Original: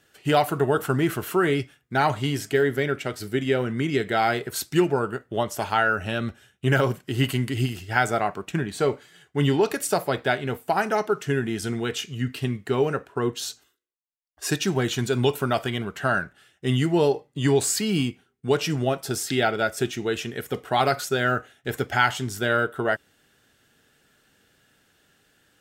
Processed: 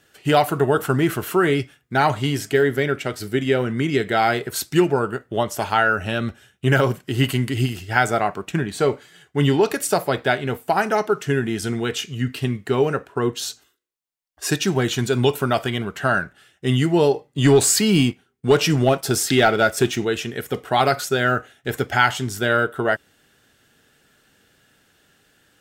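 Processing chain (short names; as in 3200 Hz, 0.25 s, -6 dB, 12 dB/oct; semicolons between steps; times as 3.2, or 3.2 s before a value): 17.38–20.05 sample leveller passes 1; gain +3.5 dB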